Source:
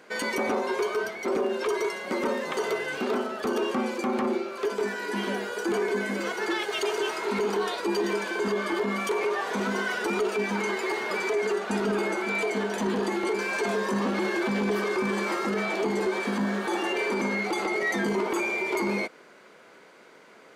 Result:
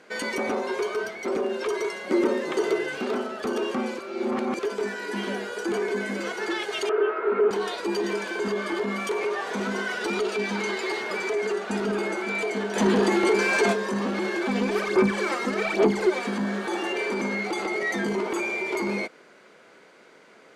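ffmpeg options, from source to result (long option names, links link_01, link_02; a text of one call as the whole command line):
ffmpeg -i in.wav -filter_complex "[0:a]asettb=1/sr,asplit=3[link_01][link_02][link_03];[link_01]atrim=end=2.094[link_04];[link_02]atrim=start=2.09:end=2.89,asetpts=PTS-STARTPTS,afade=type=in:duration=0.004:curve=qsin,afade=type=out:start_time=0.796:duration=0.004:curve=qsin,equalizer=frequency=340:width=3.3:gain=12[link_05];[link_03]atrim=start=2.886[link_06];[link_04][link_05]acrossfade=duration=0.004:curve1=hsin:curve2=qsin[link_07];[link_07][link_06]acrossfade=duration=0.004:curve1=qsin:curve2=hsin,asettb=1/sr,asplit=3[link_08][link_09][link_10];[link_08]atrim=end=6.894[link_11];[link_09]atrim=start=6.89:end=7.51,asetpts=PTS-STARTPTS,afade=type=in:duration=0.004:curve=qsin,afade=type=out:start_time=0.616:duration=0.004:curve=qsin,highpass=frequency=260:width=0.5412,highpass=frequency=260:width=1.3066,equalizer=frequency=430:width_type=q:width=4:gain=8,equalizer=frequency=610:width_type=q:width=4:gain=3,equalizer=frequency=900:width_type=q:width=4:gain=-5,equalizer=frequency=1300:width_type=q:width=4:gain=9,equalizer=frequency=2100:width_type=q:width=4:gain=-4,lowpass=frequency=2200:width=0.5412,lowpass=frequency=2200:width=1.3066[link_12];[link_10]atrim=start=7.506[link_13];[link_11][link_12]acrossfade=duration=0.004:curve1=hsin:curve2=qsin[link_14];[link_14][link_13]acrossfade=duration=0.004:curve1=qsin:curve2=hsin,asettb=1/sr,asplit=3[link_15][link_16][link_17];[link_15]atrim=end=10.014[link_18];[link_16]atrim=start=10.01:end=11.02,asetpts=PTS-STARTPTS,afade=type=in:duration=0.004:curve=qsin,afade=type=out:start_time=1.006:duration=0.004:curve=qsin,equalizer=frequency=4000:width_type=o:width=0.9:gain=5.5[link_19];[link_17]atrim=start=11.016[link_20];[link_18][link_19]acrossfade=duration=0.004:curve1=hsin:curve2=qsin[link_21];[link_21][link_20]acrossfade=duration=0.004:curve1=qsin:curve2=hsin,asplit=3[link_22][link_23][link_24];[link_22]afade=type=out:start_time=12.75:duration=0.02[link_25];[link_23]acontrast=74,afade=type=in:start_time=12.75:duration=0.02,afade=type=out:start_time=13.72:duration=0.02[link_26];[link_24]afade=type=in:start_time=13.72:duration=0.02[link_27];[link_25][link_26][link_27]amix=inputs=3:normalize=0,asplit=3[link_28][link_29][link_30];[link_28]afade=type=out:start_time=14.47:duration=0.02[link_31];[link_29]aphaser=in_gain=1:out_gain=1:delay=4.2:decay=0.65:speed=1.2:type=sinusoidal,afade=type=in:start_time=14.47:duration=0.02,afade=type=out:start_time=16.26:duration=0.02[link_32];[link_30]afade=type=in:start_time=16.26:duration=0.02[link_33];[link_31][link_32][link_33]amix=inputs=3:normalize=0,asplit=3[link_34][link_35][link_36];[link_34]atrim=end=3.992[link_37];[link_35]atrim=start=3.988:end=4.592,asetpts=PTS-STARTPTS,areverse[link_38];[link_36]atrim=start=4.588[link_39];[link_37][link_38]acrossfade=duration=0.004:curve1=hsin:curve2=hsin[link_40];[link_40][link_39]acrossfade=duration=0.004:curve1=hsin:curve2=hsin,lowpass=11000,equalizer=frequency=1000:width=2.8:gain=-2.5" out.wav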